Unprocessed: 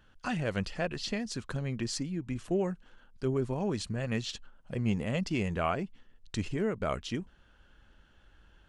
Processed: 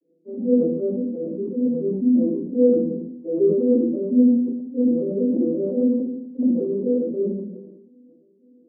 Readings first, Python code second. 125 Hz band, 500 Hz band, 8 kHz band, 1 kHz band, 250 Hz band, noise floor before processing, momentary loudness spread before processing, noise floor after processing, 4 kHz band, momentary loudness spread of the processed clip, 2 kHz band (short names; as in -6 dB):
-2.5 dB, +13.5 dB, under -35 dB, under -15 dB, +15.5 dB, -62 dBFS, 8 LU, -57 dBFS, under -40 dB, 10 LU, under -35 dB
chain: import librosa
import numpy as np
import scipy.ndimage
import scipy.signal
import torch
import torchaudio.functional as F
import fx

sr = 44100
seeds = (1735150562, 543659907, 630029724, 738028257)

y = fx.vocoder_arp(x, sr, chord='minor triad', root=52, every_ms=178)
y = fx.low_shelf(y, sr, hz=330.0, db=11.0)
y = fx.over_compress(y, sr, threshold_db=-21.0, ratio=-0.5)
y = np.clip(y, -10.0 ** (-22.5 / 20.0), 10.0 ** (-22.5 / 20.0))
y = scipy.signal.sosfilt(scipy.signal.ellip(3, 1.0, 50, [240.0, 510.0], 'bandpass', fs=sr, output='sos'), y)
y = fx.air_absorb(y, sr, metres=270.0)
y = fx.room_shoebox(y, sr, seeds[0], volume_m3=81.0, walls='mixed', distance_m=2.5)
y = fx.sustainer(y, sr, db_per_s=47.0)